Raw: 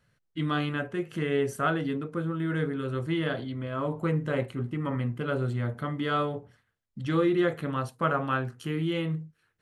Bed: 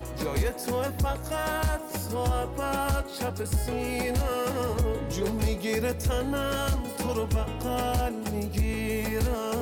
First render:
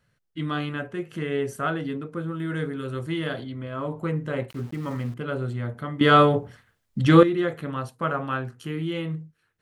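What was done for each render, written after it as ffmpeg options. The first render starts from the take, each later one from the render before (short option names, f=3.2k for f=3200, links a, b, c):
-filter_complex "[0:a]asettb=1/sr,asplit=3[a][b][c];[a]atrim=end=2.284[d];[b]atrim=start=2.28:end=3.44,asetpts=PTS-STARTPTS,afade=t=in:d=0.004:c=qsin,afade=t=out:st=1.156:d=0.004:c=qsin,highshelf=f=4.9k:g=7.5[e];[c]atrim=start=3.436[f];[d][e]acrossfade=d=0.004:c1=hsin:c2=qsin[g];[g][f]acrossfade=d=0.004:c1=qsin:c2=hsin,asettb=1/sr,asplit=3[h][i][j];[h]atrim=end=4.504[k];[i]atrim=start=4.5:end=5.14,asetpts=PTS-STARTPTS,afade=t=in:d=0.004:c=qsin,afade=t=out:st=0.636:d=0.004:c=qsin,aeval=exprs='val(0)*gte(abs(val(0)),0.0075)':c=same[l];[j]atrim=start=5.136[m];[k][l]acrossfade=d=0.004:c1=hsin:c2=qsin[n];[n][m]acrossfade=d=0.004:c1=qsin:c2=hsin,asplit=3[o][p][q];[o]atrim=end=6.012[r];[p]atrim=start=6.008:end=7.232,asetpts=PTS-STARTPTS,volume=12dB[s];[q]atrim=start=7.228[t];[r][s]acrossfade=d=0.004:c1=hsin:c2=hsin[u];[u][t]acrossfade=d=0.004:c1=hsin:c2=hsin"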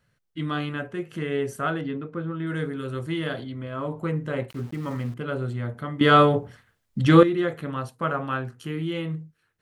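-filter_complex "[0:a]asettb=1/sr,asplit=3[a][b][c];[a]atrim=end=1.814[d];[b]atrim=start=1.81:end=2.47,asetpts=PTS-STARTPTS,afade=t=in:d=0.004:c=qsin,afade=t=out:st=0.656:d=0.004:c=qsin,lowpass=3.7k[e];[c]atrim=start=2.466[f];[d][e]acrossfade=d=0.004:c1=hsin:c2=qsin[g];[g][f]acrossfade=d=0.004:c1=qsin:c2=hsin"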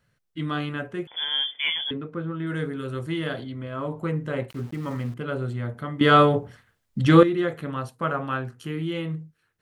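-filter_complex "[0:a]asettb=1/sr,asplit=3[a][b][c];[a]atrim=end=1.074[d];[b]atrim=start=1.07:end=1.91,asetpts=PTS-STARTPTS,afade=t=in:d=0.004:c=qsin,afade=t=out:st=0.836:d=0.004:c=qsin,lowpass=f=3.1k:t=q:w=0.5098,lowpass=f=3.1k:t=q:w=0.6013,lowpass=f=3.1k:t=q:w=0.9,lowpass=f=3.1k:t=q:w=2.563,afreqshift=-3600[e];[c]atrim=start=1.906[f];[d][e]acrossfade=d=0.004:c1=hsin:c2=qsin[g];[g][f]acrossfade=d=0.004:c1=qsin:c2=hsin"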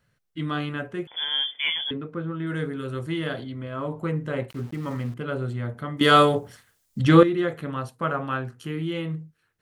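-filter_complex "[0:a]asettb=1/sr,asplit=3[a][b][c];[a]atrim=end=5.974[d];[b]atrim=start=5.97:end=7,asetpts=PTS-STARTPTS,afade=t=in:d=0.004:c=qsin,afade=t=out:st=1.026:d=0.004:c=qsin,bass=f=250:g=-4,treble=f=4k:g=13[e];[c]atrim=start=6.996[f];[d][e]acrossfade=d=0.004:c1=hsin:c2=qsin[g];[g][f]acrossfade=d=0.004:c1=qsin:c2=hsin"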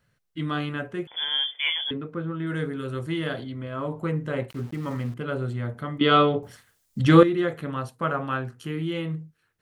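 -filter_complex "[0:a]asplit=3[a][b][c];[a]afade=t=out:st=1.37:d=0.02[d];[b]highpass=f=380:w=0.5412,highpass=f=380:w=1.3066,afade=t=in:st=1.37:d=0.02,afade=t=out:st=1.81:d=0.02[e];[c]afade=t=in:st=1.81:d=0.02[f];[d][e][f]amix=inputs=3:normalize=0,asettb=1/sr,asplit=3[g][h][i];[g]atrim=end=5.984[j];[h]atrim=start=5.98:end=6.43,asetpts=PTS-STARTPTS,afade=t=in:d=0.004:c=qsin,afade=t=out:st=0.446:d=0.004:c=qsin,highpass=120,equalizer=f=560:t=q:w=4:g=-4,equalizer=f=900:t=q:w=4:g=-7,equalizer=f=1.7k:t=q:w=4:g=-9,lowpass=f=3.4k:w=0.5412,lowpass=f=3.4k:w=1.3066[k];[i]atrim=start=6.426[l];[j][k]acrossfade=d=0.004:c1=hsin:c2=qsin[m];[m][l]acrossfade=d=0.004:c1=qsin:c2=hsin"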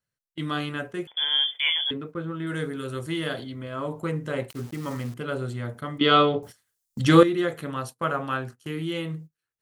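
-af "agate=range=-18dB:threshold=-38dB:ratio=16:detection=peak,bass=f=250:g=-3,treble=f=4k:g=9"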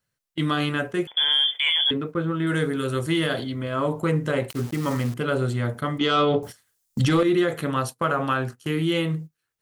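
-af "acontrast=71,alimiter=limit=-13dB:level=0:latency=1:release=62"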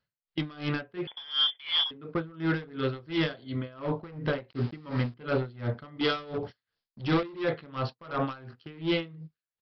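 -af "aresample=11025,volume=20dB,asoftclip=hard,volume=-20dB,aresample=44100,aeval=exprs='val(0)*pow(10,-23*(0.5-0.5*cos(2*PI*2.8*n/s))/20)':c=same"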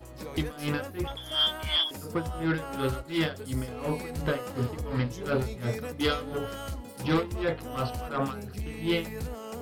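-filter_complex "[1:a]volume=-9.5dB[a];[0:a][a]amix=inputs=2:normalize=0"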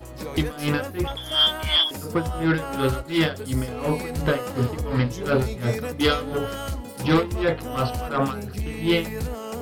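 -af "volume=6.5dB"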